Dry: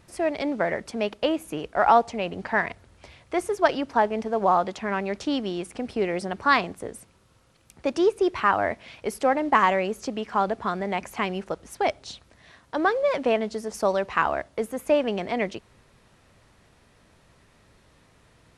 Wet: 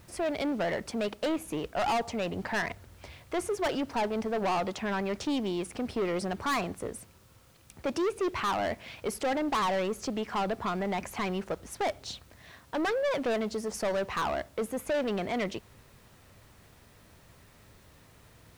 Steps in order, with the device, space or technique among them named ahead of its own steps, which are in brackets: open-reel tape (soft clip -25.5 dBFS, distortion -6 dB; bell 91 Hz +4 dB 1.07 oct; white noise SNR 34 dB)

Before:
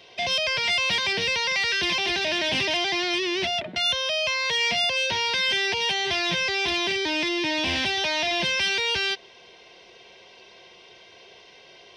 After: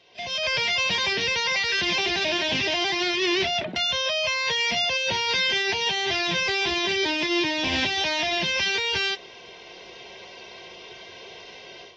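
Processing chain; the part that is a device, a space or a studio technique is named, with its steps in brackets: low-bitrate web radio (AGC gain up to 14 dB; limiter -9 dBFS, peak gain reduction 6.5 dB; gain -8 dB; AAC 24 kbps 22050 Hz)

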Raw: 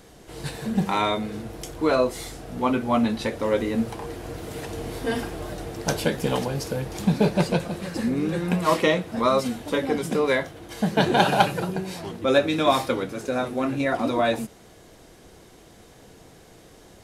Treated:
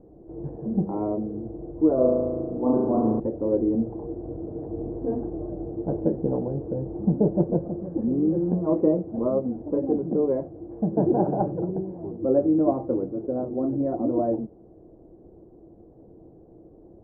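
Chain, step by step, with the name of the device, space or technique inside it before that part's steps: 1.94–3.2 flutter echo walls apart 6.2 m, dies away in 1.4 s; under water (LPF 660 Hz 24 dB/oct; bell 330 Hz +10 dB 0.27 oct); gain -1.5 dB

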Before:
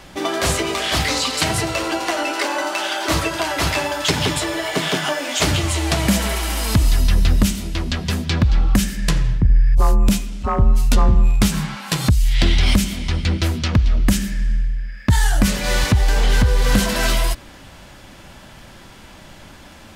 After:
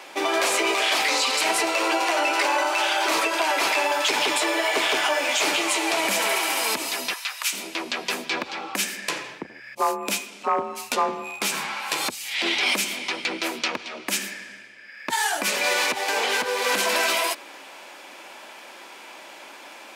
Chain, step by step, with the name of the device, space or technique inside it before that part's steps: 7.13–7.53 HPF 1000 Hz 24 dB/oct; laptop speaker (HPF 340 Hz 24 dB/oct; bell 910 Hz +4 dB 0.56 oct; bell 2400 Hz +8 dB 0.26 oct; limiter -12.5 dBFS, peak gain reduction 9.5 dB)

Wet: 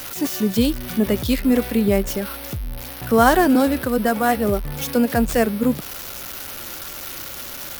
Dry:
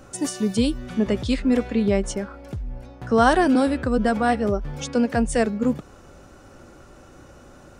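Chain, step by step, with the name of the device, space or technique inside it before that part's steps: budget class-D amplifier (switching dead time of 0.065 ms; switching spikes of -18 dBFS); 3.79–4.37 low shelf 120 Hz -11 dB; gain +2.5 dB

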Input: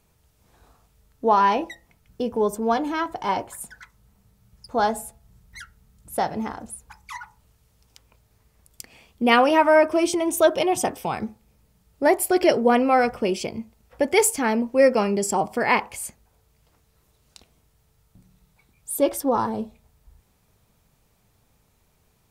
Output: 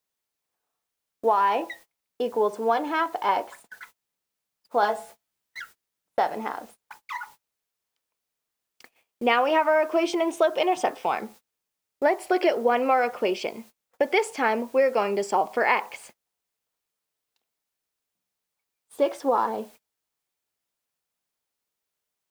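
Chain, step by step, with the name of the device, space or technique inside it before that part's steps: baby monitor (BPF 430–3400 Hz; compressor 10:1, threshold -20 dBFS, peak gain reduction 8.5 dB; white noise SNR 29 dB; gate -49 dBFS, range -28 dB); 4.81–5.6 doubler 15 ms -2 dB; gain +3 dB

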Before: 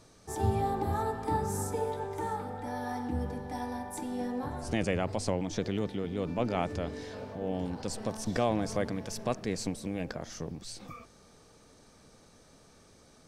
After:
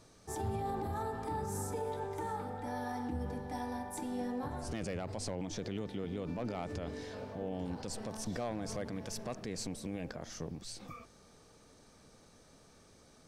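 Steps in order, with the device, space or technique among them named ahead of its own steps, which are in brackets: clipper into limiter (hard clip -20 dBFS, distortion -22 dB; limiter -26.5 dBFS, peak gain reduction 6.5 dB); gain -2.5 dB

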